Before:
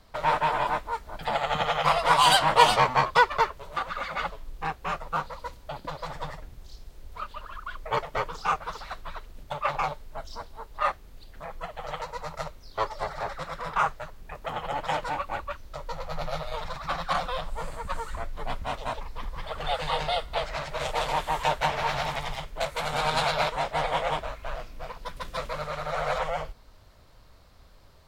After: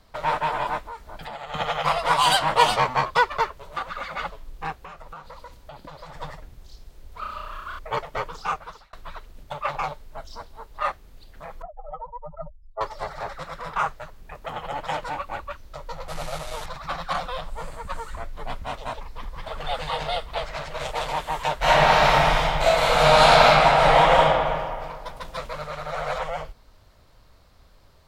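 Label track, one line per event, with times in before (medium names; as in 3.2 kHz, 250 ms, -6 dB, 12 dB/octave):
0.790000	1.540000	compression, threshold -32 dBFS
4.830000	6.170000	compression 12:1, threshold -36 dBFS
7.190000	7.790000	flutter echo walls apart 5.8 m, dies away in 0.95 s
8.320000	8.930000	fade out equal-power
11.620000	12.810000	spectral contrast enhancement exponent 3.2
16.080000	16.660000	one-bit delta coder 64 kbps, step -31.5 dBFS
18.910000	19.630000	echo throw 550 ms, feedback 65%, level -4 dB
21.580000	24.230000	reverb throw, RT60 2 s, DRR -11.5 dB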